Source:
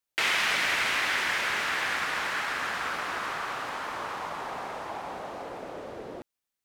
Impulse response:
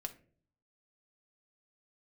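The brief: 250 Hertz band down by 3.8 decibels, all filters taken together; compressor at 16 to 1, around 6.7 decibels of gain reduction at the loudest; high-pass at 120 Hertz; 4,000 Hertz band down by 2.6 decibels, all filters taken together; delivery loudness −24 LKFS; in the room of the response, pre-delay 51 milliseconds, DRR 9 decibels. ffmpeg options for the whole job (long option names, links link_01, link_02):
-filter_complex "[0:a]highpass=120,equalizer=frequency=250:width_type=o:gain=-5,equalizer=frequency=4000:width_type=o:gain=-3.5,acompressor=threshold=-30dB:ratio=16,asplit=2[link_01][link_02];[1:a]atrim=start_sample=2205,adelay=51[link_03];[link_02][link_03]afir=irnorm=-1:irlink=0,volume=-7dB[link_04];[link_01][link_04]amix=inputs=2:normalize=0,volume=9.5dB"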